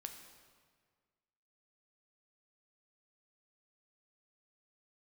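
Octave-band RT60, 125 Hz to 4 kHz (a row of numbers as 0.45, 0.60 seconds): 1.9, 1.8, 1.8, 1.7, 1.5, 1.3 seconds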